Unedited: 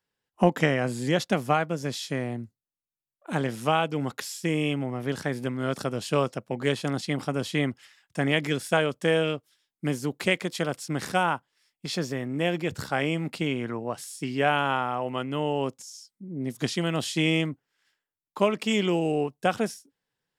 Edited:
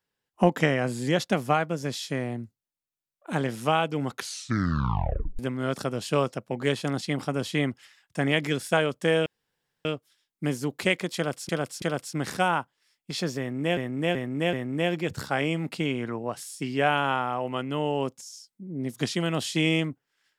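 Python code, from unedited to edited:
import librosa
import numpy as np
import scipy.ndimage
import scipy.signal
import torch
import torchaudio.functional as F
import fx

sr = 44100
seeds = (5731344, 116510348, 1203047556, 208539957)

y = fx.edit(x, sr, fx.tape_stop(start_s=4.12, length_s=1.27),
    fx.insert_room_tone(at_s=9.26, length_s=0.59),
    fx.repeat(start_s=10.57, length_s=0.33, count=3),
    fx.repeat(start_s=12.14, length_s=0.38, count=4), tone=tone)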